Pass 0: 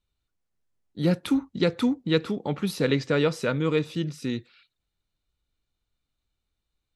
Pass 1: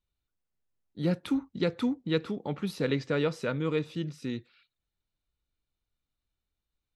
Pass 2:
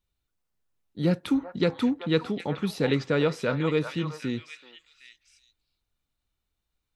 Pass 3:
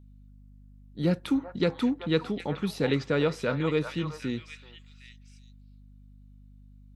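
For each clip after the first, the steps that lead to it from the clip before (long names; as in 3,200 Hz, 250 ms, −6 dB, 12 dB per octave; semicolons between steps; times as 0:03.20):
high-shelf EQ 6,200 Hz −6.5 dB; level −5 dB
echo through a band-pass that steps 380 ms, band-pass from 970 Hz, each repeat 1.4 octaves, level −3 dB; level +4 dB
mains hum 50 Hz, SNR 21 dB; level −1.5 dB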